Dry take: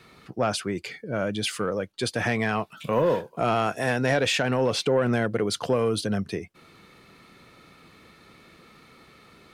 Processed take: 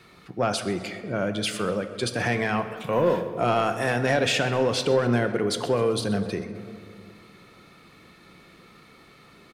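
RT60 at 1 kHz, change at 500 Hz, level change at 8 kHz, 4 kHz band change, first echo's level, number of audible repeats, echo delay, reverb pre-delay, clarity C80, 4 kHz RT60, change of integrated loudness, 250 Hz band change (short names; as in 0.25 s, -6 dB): 1.9 s, +1.0 dB, +0.5 dB, +0.5 dB, -17.5 dB, 2, 0.128 s, 3 ms, 10.5 dB, 1.1 s, +1.0 dB, +0.5 dB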